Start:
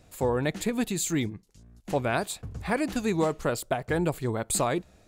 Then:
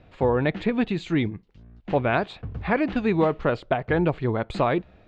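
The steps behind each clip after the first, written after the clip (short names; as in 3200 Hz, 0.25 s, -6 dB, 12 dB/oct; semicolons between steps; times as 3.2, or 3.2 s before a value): LPF 3300 Hz 24 dB/oct; gain +4.5 dB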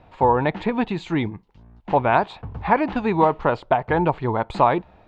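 bell 910 Hz +13.5 dB 0.59 oct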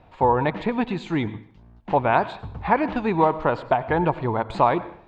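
plate-style reverb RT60 0.56 s, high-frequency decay 0.85×, pre-delay 80 ms, DRR 15 dB; gain -1.5 dB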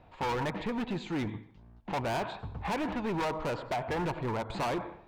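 overloaded stage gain 24 dB; gain -5 dB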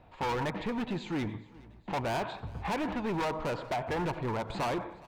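feedback echo 0.416 s, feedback 50%, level -23 dB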